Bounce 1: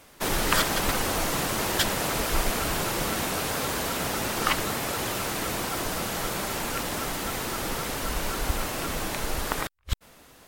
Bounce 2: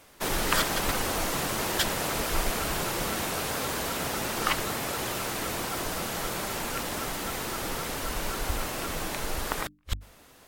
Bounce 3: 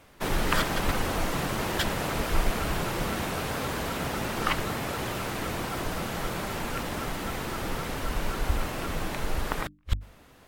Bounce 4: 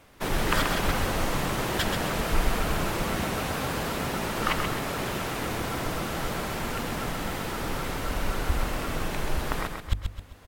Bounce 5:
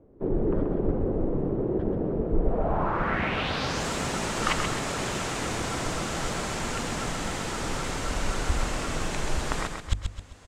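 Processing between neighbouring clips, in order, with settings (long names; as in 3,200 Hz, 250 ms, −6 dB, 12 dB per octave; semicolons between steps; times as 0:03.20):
mains-hum notches 50/100/150/200/250/300 Hz; level −2 dB
bass and treble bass +5 dB, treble −7 dB
repeating echo 131 ms, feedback 39%, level −5.5 dB
low-pass filter sweep 400 Hz → 7,500 Hz, 0:02.38–0:03.86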